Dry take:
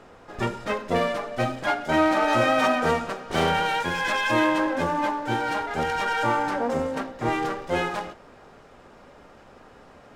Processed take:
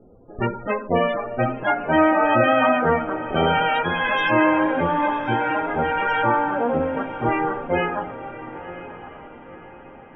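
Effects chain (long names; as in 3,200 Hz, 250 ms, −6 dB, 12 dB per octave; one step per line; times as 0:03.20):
spectral peaks only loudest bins 32
low-pass that shuts in the quiet parts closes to 330 Hz, open at −21.5 dBFS
feedback delay with all-pass diffusion 1,036 ms, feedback 43%, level −13 dB
level +4 dB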